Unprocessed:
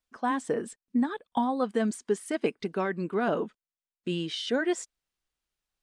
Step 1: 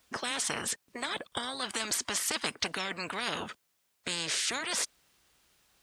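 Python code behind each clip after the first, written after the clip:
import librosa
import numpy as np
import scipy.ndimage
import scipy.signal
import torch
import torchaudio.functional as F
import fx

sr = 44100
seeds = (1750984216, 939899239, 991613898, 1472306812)

y = scipy.signal.sosfilt(scipy.signal.butter(2, 70.0, 'highpass', fs=sr, output='sos'), x)
y = fx.spectral_comp(y, sr, ratio=10.0)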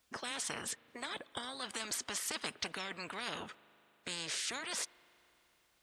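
y = fx.rev_spring(x, sr, rt60_s=3.5, pass_ms=(39,), chirp_ms=55, drr_db=19.5)
y = y * librosa.db_to_amplitude(-7.0)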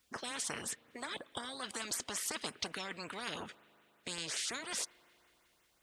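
y = fx.filter_lfo_notch(x, sr, shape='saw_up', hz=5.5, low_hz=590.0, high_hz=5100.0, q=1.6)
y = y * librosa.db_to_amplitude(1.0)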